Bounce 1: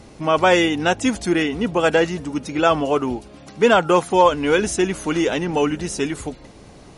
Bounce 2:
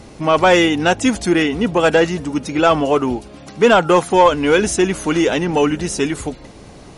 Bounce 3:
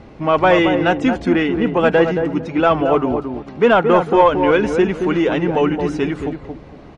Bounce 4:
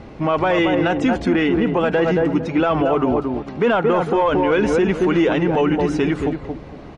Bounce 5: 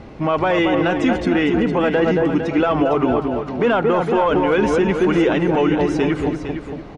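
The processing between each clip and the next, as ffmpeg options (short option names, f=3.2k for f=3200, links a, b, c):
-af "acontrast=35,volume=-1dB"
-filter_complex "[0:a]lowpass=2.6k,asplit=2[a][b];[b]adelay=224,lowpass=f=970:p=1,volume=-5dB,asplit=2[c][d];[d]adelay=224,lowpass=f=970:p=1,volume=0.26,asplit=2[e][f];[f]adelay=224,lowpass=f=970:p=1,volume=0.26[g];[a][c][e][g]amix=inputs=4:normalize=0,volume=-1dB"
-af "alimiter=level_in=11dB:limit=-1dB:release=50:level=0:latency=1,volume=-8.5dB"
-af "aecho=1:1:457:0.355"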